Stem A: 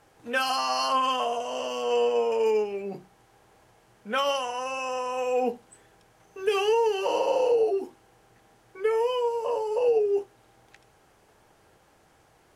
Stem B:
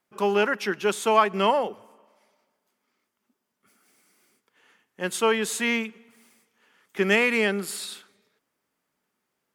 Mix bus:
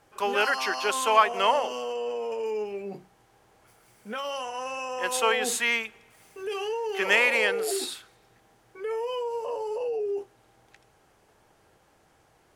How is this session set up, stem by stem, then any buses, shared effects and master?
-2.0 dB, 0.00 s, no send, limiter -22.5 dBFS, peak gain reduction 8.5 dB
+1.5 dB, 0.00 s, no send, Bessel high-pass 720 Hz, order 2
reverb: off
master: dry

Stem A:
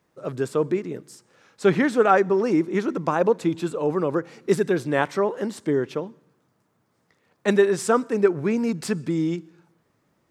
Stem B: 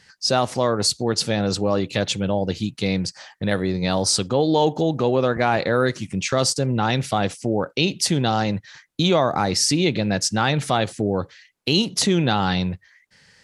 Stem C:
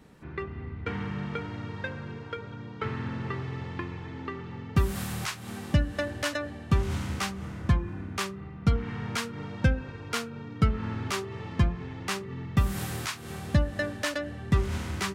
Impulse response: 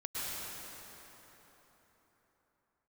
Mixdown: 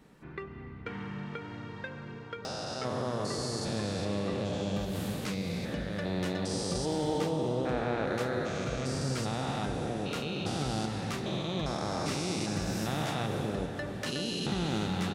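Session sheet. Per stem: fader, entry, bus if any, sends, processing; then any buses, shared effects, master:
off
-5.5 dB, 2.45 s, bus A, send -11.5 dB, stepped spectrum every 0.4 s
-3.0 dB, 0.00 s, bus A, send -23 dB, bell 82 Hz -13 dB 0.48 oct; compressor, threshold -27 dBFS, peak gain reduction 8.5 dB
bus A: 0.0 dB, compressor 2:1, threshold -37 dBFS, peak gain reduction 8 dB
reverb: on, RT60 4.1 s, pre-delay 97 ms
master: dry

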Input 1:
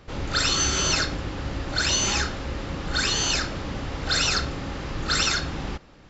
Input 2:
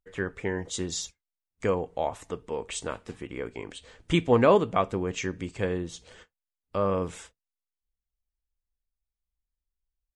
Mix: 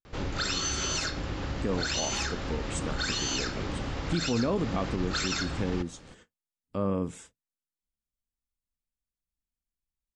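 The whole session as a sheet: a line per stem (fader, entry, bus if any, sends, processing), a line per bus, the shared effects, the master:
-0.5 dB, 0.05 s, no send, compressor 3:1, threshold -29 dBFS, peak gain reduction 8.5 dB
0.88 s -19 dB -> 1.1 s -7.5 dB, 0.00 s, no send, graphic EQ 125/250/8000 Hz +8/+11/+6 dB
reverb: off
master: limiter -19 dBFS, peak gain reduction 9.5 dB

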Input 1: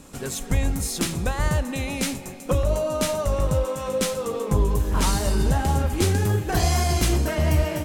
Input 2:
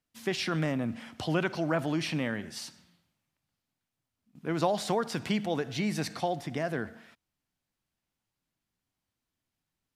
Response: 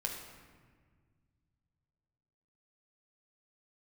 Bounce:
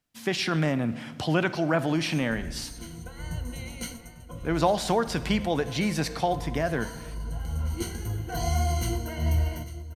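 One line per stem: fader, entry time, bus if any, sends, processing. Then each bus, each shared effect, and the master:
-15.0 dB, 1.80 s, send -10 dB, echo send -14 dB, ripple EQ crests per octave 1.9, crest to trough 18 dB; auto duck -17 dB, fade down 0.35 s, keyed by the second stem
+3.0 dB, 0.00 s, send -12.5 dB, no echo send, dry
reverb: on, RT60 1.6 s, pre-delay 7 ms
echo: echo 0.848 s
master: dry

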